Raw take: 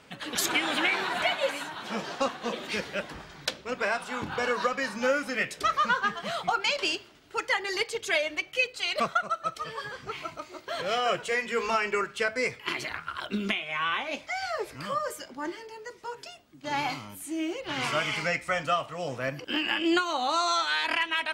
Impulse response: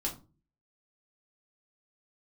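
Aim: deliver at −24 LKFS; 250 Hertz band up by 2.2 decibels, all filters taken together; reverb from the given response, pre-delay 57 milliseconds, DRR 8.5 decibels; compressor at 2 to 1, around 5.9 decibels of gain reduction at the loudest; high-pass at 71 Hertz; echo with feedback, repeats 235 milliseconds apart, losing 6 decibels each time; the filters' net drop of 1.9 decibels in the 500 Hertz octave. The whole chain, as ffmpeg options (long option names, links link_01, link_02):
-filter_complex "[0:a]highpass=71,equalizer=frequency=250:width_type=o:gain=4.5,equalizer=frequency=500:width_type=o:gain=-3.5,acompressor=threshold=-32dB:ratio=2,aecho=1:1:235|470|705|940|1175|1410:0.501|0.251|0.125|0.0626|0.0313|0.0157,asplit=2[link_01][link_02];[1:a]atrim=start_sample=2205,adelay=57[link_03];[link_02][link_03]afir=irnorm=-1:irlink=0,volume=-11.5dB[link_04];[link_01][link_04]amix=inputs=2:normalize=0,volume=7.5dB"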